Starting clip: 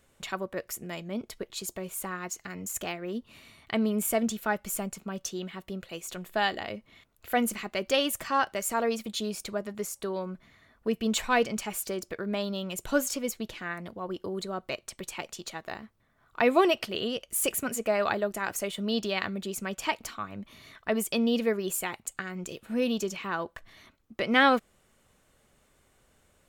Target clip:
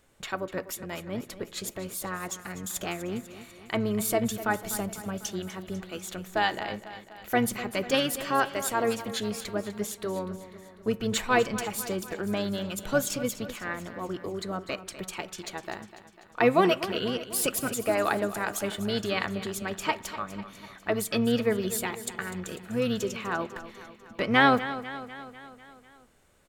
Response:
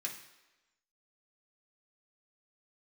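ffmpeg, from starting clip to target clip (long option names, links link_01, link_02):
-filter_complex "[0:a]asplit=2[link_01][link_02];[link_02]asetrate=22050,aresample=44100,atempo=2,volume=-10dB[link_03];[link_01][link_03]amix=inputs=2:normalize=0,aecho=1:1:248|496|744|992|1240|1488:0.2|0.118|0.0695|0.041|0.0242|0.0143,asplit=2[link_04][link_05];[1:a]atrim=start_sample=2205,lowpass=2000[link_06];[link_05][link_06]afir=irnorm=-1:irlink=0,volume=-10dB[link_07];[link_04][link_07]amix=inputs=2:normalize=0"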